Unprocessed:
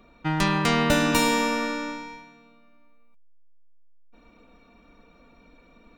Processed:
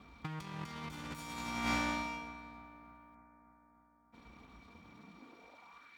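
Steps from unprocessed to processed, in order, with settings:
lower of the sound and its delayed copy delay 0.88 ms
high-pass filter 46 Hz
compressor whose output falls as the input rises −31 dBFS, ratio −0.5
high-pass filter sweep 61 Hz → 1,900 Hz, 0:04.68–0:05.96
on a send: bucket-brigade delay 296 ms, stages 4,096, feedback 69%, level −17 dB
on the sum: level −7.5 dB

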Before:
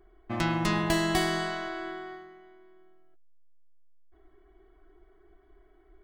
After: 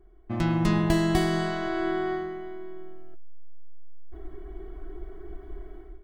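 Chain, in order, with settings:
low-shelf EQ 470 Hz +11.5 dB
automatic gain control gain up to 16.5 dB
level −6.5 dB

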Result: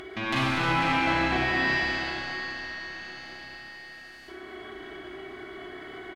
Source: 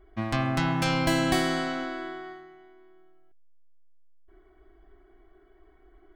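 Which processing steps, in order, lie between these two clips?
treble cut that deepens with the level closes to 1,300 Hz, closed at −21.5 dBFS
meter weighting curve D
in parallel at 0 dB: downward compressor, threshold −42 dBFS, peak gain reduction 18.5 dB
on the sum: high-pass filter 68 Hz
high-shelf EQ 9,700 Hz −3.5 dB
tube saturation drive 17 dB, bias 0.4
double-tracking delay 16 ms −6.5 dB
four-comb reverb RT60 3.5 s, combs from 30 ms, DRR −8 dB
upward compression, threshold −28 dBFS
echo with shifted repeats 140 ms, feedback 62%, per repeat −130 Hz, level −16 dB
level −3 dB

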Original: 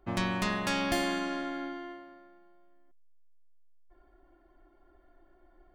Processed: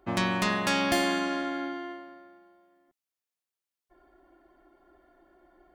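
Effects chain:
high-pass filter 140 Hz 6 dB per octave
level +4.5 dB

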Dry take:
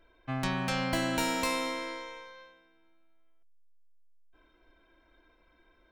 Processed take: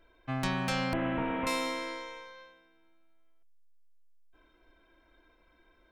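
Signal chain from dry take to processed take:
0:00.93–0:01.47: linear delta modulator 16 kbit/s, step −39.5 dBFS

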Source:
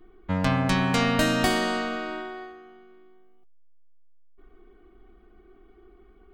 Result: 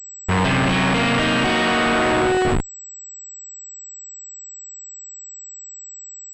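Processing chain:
dynamic equaliser 2,700 Hz, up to +7 dB, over −45 dBFS, Q 1.8
fuzz pedal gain 43 dB, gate −41 dBFS
leveller curve on the samples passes 3
comparator with hysteresis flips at −21 dBFS
switching amplifier with a slow clock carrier 7,800 Hz

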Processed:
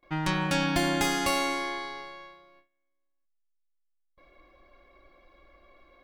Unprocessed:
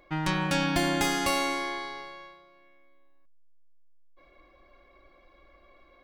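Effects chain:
noise gate with hold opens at −49 dBFS

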